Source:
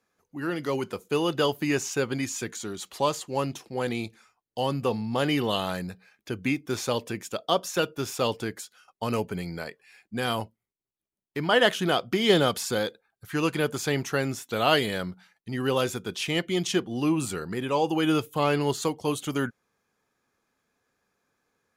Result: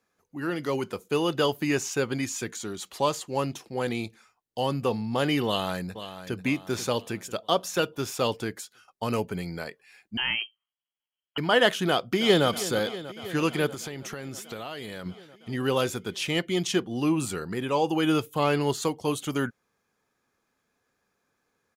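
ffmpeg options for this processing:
-filter_complex "[0:a]asplit=2[s0][s1];[s1]afade=t=in:st=5.46:d=0.01,afade=t=out:st=6.4:d=0.01,aecho=0:1:490|980|1470|1960|2450:0.266073|0.119733|0.0538797|0.0242459|0.0109106[s2];[s0][s2]amix=inputs=2:normalize=0,asettb=1/sr,asplit=3[s3][s4][s5];[s3]atrim=end=10.174[s6];[s4]atrim=start=10.17:end=11.38,asetpts=PTS-STARTPTS,afade=t=in:d=0.004:c=qsin,afade=t=out:st=1.206:d=0.004:c=qsin,lowpass=f=2800:t=q:w=0.5098,lowpass=f=2800:t=q:w=0.6013,lowpass=f=2800:t=q:w=0.9,lowpass=f=2800:t=q:w=2.563,afreqshift=-3300[s7];[s5]atrim=start=11.376[s8];[s6][s7]acrossfade=d=0.004:c1=hsin:c2=qsin[s9];[s9][s8]acrossfade=d=0.004:c1=qsin:c2=hsin,asplit=2[s10][s11];[s11]afade=t=in:st=11.88:d=0.01,afade=t=out:st=12.47:d=0.01,aecho=0:1:320|640|960|1280|1600|1920|2240|2560|2880|3200|3520|3840:0.188365|0.150692|0.120554|0.0964428|0.0771543|0.0617234|0.0493787|0.039503|0.0316024|0.0252819|0.0202255|0.0161804[s12];[s10][s12]amix=inputs=2:normalize=0,asettb=1/sr,asplit=3[s13][s14][s15];[s13]atrim=end=13.684[s16];[s14]atrim=start=13.68:end=15.06,asetpts=PTS-STARTPTS,afade=t=in:d=0.004:c=qsin,afade=t=out:st=1.376:d=0.004:c=qsin,acompressor=threshold=0.0251:ratio=16:attack=3.2:release=140:knee=1:detection=peak[s17];[s15]atrim=start=15.056[s18];[s16][s17]acrossfade=d=0.004:c1=hsin:c2=qsin[s19];[s19][s18]acrossfade=d=0.004:c1=qsin:c2=hsin"

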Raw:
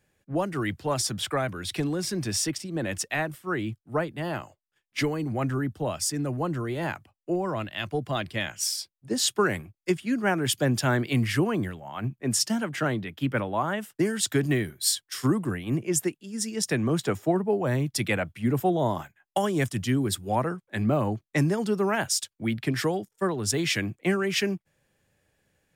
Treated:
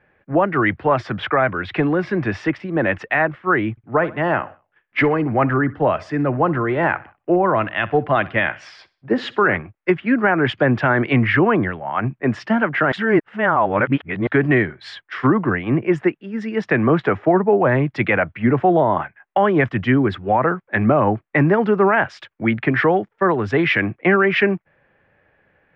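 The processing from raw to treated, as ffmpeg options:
-filter_complex "[0:a]asettb=1/sr,asplit=3[s0][s1][s2];[s0]atrim=end=3.714[s3];[s1]atrim=start=3.71:end=9.57,asetpts=PTS-STARTPTS,afade=t=in:d=0.004:c=qsin,afade=t=out:st=5.856:d=0.004:c=qsin,aecho=1:1:63|126|189:0.0944|0.0387|0.0159,atrim=end_sample=258426[s4];[s2]atrim=start=9.566[s5];[s3][s4]acrossfade=d=0.004:c1=hsin:c2=qsin[s6];[s6][s5]acrossfade=d=0.004:c1=qsin:c2=hsin,asplit=3[s7][s8][s9];[s7]atrim=end=12.922[s10];[s8]atrim=start=12.918:end=14.272,asetpts=PTS-STARTPTS,areverse[s11];[s9]atrim=start=14.268[s12];[s10][s11]acrossfade=d=0.004:c1=hsin:c2=hsin[s13];[s13][s12]acrossfade=d=0.004:c1=hsin:c2=hsin,lowpass=f=2100:w=0.5412,lowpass=f=2100:w=1.3066,lowshelf=f=390:g=-11,alimiter=level_in=12.6:limit=0.891:release=50:level=0:latency=1,volume=0.531"

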